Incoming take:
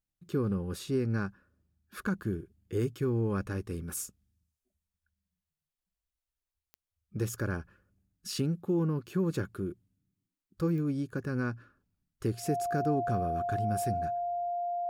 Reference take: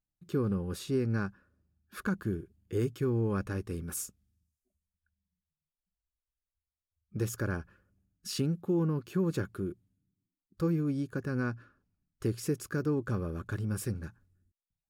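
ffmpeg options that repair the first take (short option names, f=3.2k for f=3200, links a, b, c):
-af "adeclick=t=4,bandreject=f=700:w=30"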